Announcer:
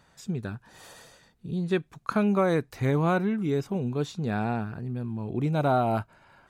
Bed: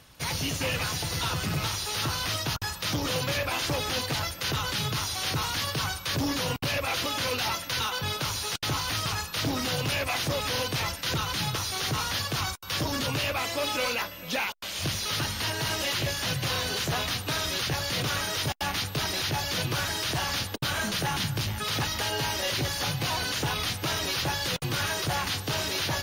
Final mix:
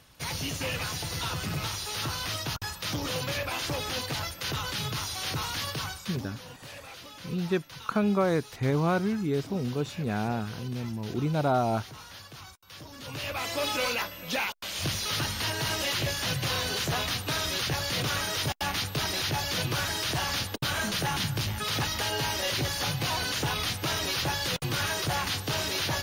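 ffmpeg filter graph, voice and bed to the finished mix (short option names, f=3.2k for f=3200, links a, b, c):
-filter_complex "[0:a]adelay=5800,volume=-1.5dB[a];[1:a]volume=13dB,afade=t=out:st=5.7:d=0.61:silence=0.211349,afade=t=in:st=12.97:d=0.63:silence=0.158489[b];[a][b]amix=inputs=2:normalize=0"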